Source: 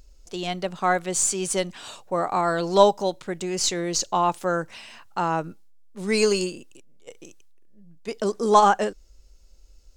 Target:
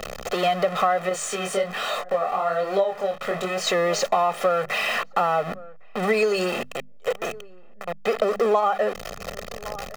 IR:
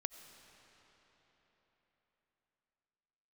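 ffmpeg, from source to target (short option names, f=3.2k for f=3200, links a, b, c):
-filter_complex "[0:a]aeval=exprs='val(0)+0.5*0.0708*sgn(val(0))':c=same,acrossover=split=220 2900:gain=0.0631 1 0.141[a][b][c];[a][b][c]amix=inputs=3:normalize=0,bandreject=f=50:t=h:w=6,bandreject=f=100:t=h:w=6,bandreject=f=150:t=h:w=6,bandreject=f=200:t=h:w=6,bandreject=f=250:t=h:w=6,aecho=1:1:1.6:0.91,asplit=2[d][e];[e]adelay=1108,volume=-28dB,highshelf=f=4k:g=-24.9[f];[d][f]amix=inputs=2:normalize=0,acompressor=threshold=-23dB:ratio=8,asettb=1/sr,asplit=3[g][h][i];[g]atrim=end=1.094[j];[h]atrim=start=1.09:end=3.67,asetpts=PTS-STARTPTS,afade=t=in:d=0.004:c=qsin,afade=t=out:st=2.576:d=0.004:c=qsin,flanger=delay=20:depth=6.2:speed=1.2[k];[i]atrim=start=3.666[l];[j][k]acrossfade=d=0.004:c1=hsin:c2=qsin[m];[m][l]acrossfade=d=0.004:c1=qsin:c2=hsin,volume=5.5dB"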